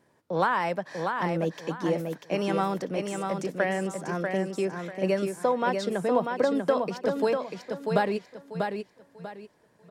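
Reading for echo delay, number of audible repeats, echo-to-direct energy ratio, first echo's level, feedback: 642 ms, 3, -4.5 dB, -5.0 dB, 29%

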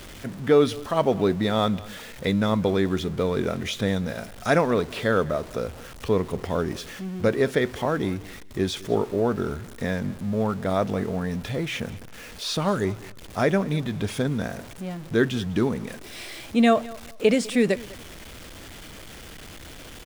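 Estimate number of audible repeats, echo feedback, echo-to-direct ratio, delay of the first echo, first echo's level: 2, 24%, -20.5 dB, 201 ms, -20.5 dB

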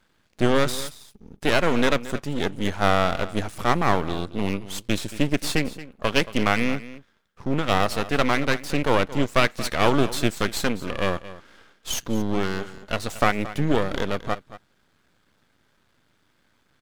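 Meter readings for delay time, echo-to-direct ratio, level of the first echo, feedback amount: 226 ms, -16.0 dB, -16.0 dB, no regular repeats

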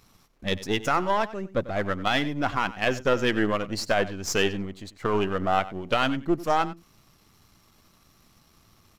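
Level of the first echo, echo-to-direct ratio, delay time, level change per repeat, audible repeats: -16.5 dB, -16.5 dB, 94 ms, no regular repeats, 1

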